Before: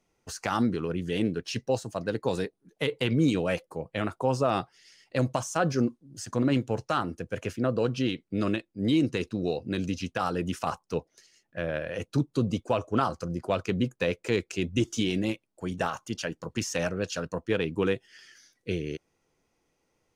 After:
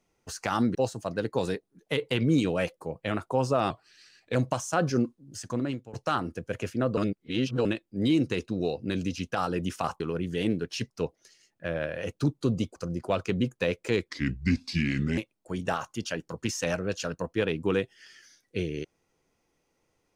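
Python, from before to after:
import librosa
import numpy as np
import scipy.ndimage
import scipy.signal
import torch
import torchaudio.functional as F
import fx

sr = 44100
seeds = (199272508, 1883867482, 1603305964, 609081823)

y = fx.edit(x, sr, fx.move(start_s=0.75, length_s=0.9, to_s=10.83),
    fx.speed_span(start_s=4.6, length_s=0.58, speed=0.89),
    fx.fade_out_to(start_s=6.17, length_s=0.59, floor_db=-21.0),
    fx.reverse_span(start_s=7.8, length_s=0.68),
    fx.cut(start_s=12.69, length_s=0.47),
    fx.speed_span(start_s=14.48, length_s=0.82, speed=0.75), tone=tone)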